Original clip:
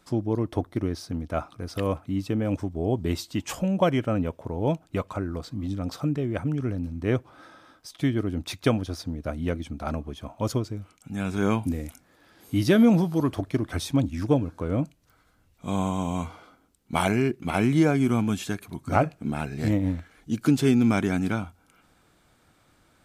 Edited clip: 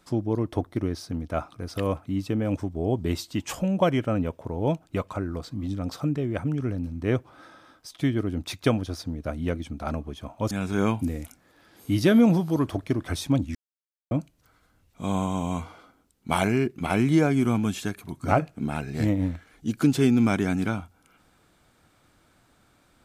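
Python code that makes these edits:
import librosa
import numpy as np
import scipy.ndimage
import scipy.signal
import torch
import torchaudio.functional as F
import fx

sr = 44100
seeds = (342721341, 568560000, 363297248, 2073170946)

y = fx.edit(x, sr, fx.cut(start_s=10.51, length_s=0.64),
    fx.silence(start_s=14.19, length_s=0.56), tone=tone)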